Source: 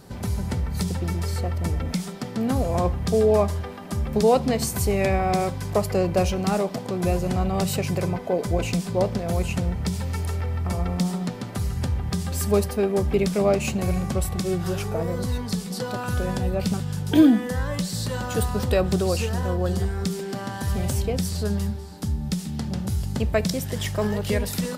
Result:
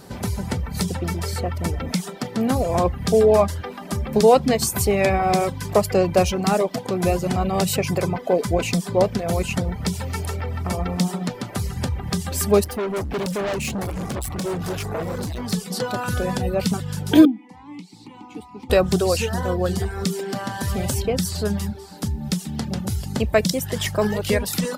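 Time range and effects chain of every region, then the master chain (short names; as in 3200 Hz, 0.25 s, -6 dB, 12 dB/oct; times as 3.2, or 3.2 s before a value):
12.64–15.53 low shelf 130 Hz +4.5 dB + overloaded stage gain 26.5 dB
17.25–18.7 vowel filter u + high shelf 3700 Hz +6.5 dB
whole clip: reverb removal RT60 0.52 s; low shelf 130 Hz -7.5 dB; gain +5.5 dB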